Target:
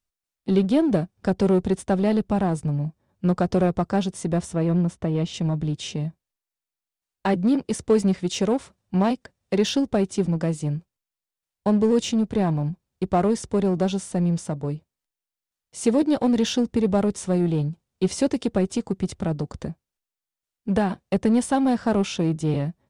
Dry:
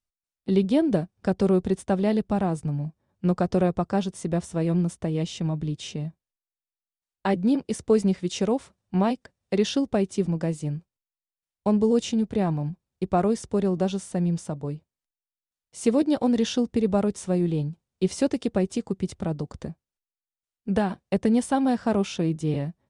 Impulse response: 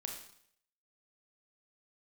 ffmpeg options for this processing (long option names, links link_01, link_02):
-filter_complex "[0:a]asplit=2[link_01][link_02];[link_02]asoftclip=type=hard:threshold=-26.5dB,volume=-5dB[link_03];[link_01][link_03]amix=inputs=2:normalize=0,asettb=1/sr,asplit=3[link_04][link_05][link_06];[link_04]atrim=end=4.534[link_07];[link_05]atrim=start=4.53:end=5.34,asetpts=PTS-STARTPTS,afade=type=in:duration=0.004:curve=qsin,afade=type=out:start_time=0.806:duration=0.004:curve=qsin,aemphasis=mode=reproduction:type=50kf[link_08];[link_06]atrim=start=5.336[link_09];[link_07][link_08]acrossfade=duration=0.004:curve1=hsin:curve2=qsin[link_10];[link_10][link_09]acrossfade=duration=0.004:curve1=qsin:curve2=hsin"